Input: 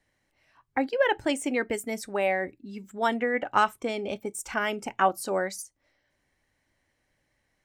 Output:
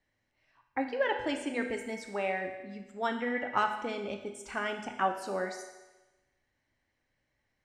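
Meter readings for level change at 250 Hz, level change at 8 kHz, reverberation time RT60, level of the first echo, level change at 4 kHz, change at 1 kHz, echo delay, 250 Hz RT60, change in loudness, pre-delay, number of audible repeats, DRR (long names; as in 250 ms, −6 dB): −5.0 dB, −11.0 dB, 1.1 s, no echo audible, −5.5 dB, −5.5 dB, no echo audible, 1.1 s, −5.5 dB, 8 ms, no echo audible, 4.0 dB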